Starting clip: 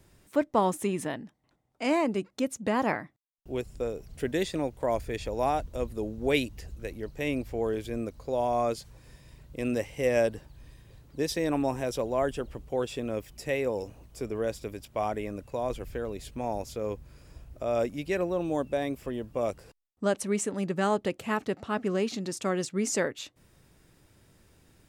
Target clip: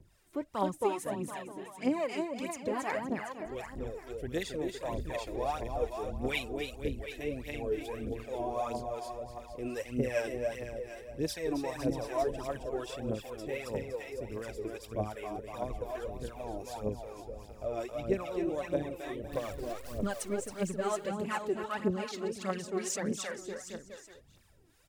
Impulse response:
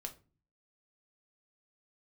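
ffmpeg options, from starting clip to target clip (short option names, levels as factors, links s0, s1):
-filter_complex "[0:a]asettb=1/sr,asplit=3[s0][s1][s2];[s0]atrim=end=19.324[s3];[s1]atrim=start=19.32:end=20.07,asetpts=PTS-STARTPTS,afade=t=in:d=0.004:c=qsin,afade=t=out:st=0.746:d=0.004:c=qsin,aeval=exprs='val(0)+0.5*0.02*sgn(val(0))':c=same[s4];[s2]atrim=start=20.066[s5];[s3][s4]acrossfade=d=0.004:c1=hsin:c2=qsin[s6];[s6][s5]acrossfade=d=0.004:c1=qsin:c2=hsin,aecho=1:1:270|513|731.7|928.5|1106:0.631|0.398|0.251|0.158|0.1,aphaser=in_gain=1:out_gain=1:delay=3.2:decay=0.64:speed=1.6:type=triangular,acrossover=split=650[s7][s8];[s7]aeval=exprs='val(0)*(1-0.7/2+0.7/2*cos(2*PI*2.6*n/s))':c=same[s9];[s8]aeval=exprs='val(0)*(1-0.7/2-0.7/2*cos(2*PI*2.6*n/s))':c=same[s10];[s9][s10]amix=inputs=2:normalize=0,volume=0.501"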